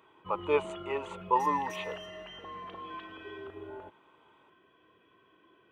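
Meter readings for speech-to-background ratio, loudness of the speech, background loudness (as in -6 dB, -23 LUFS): 11.5 dB, -32.0 LUFS, -43.5 LUFS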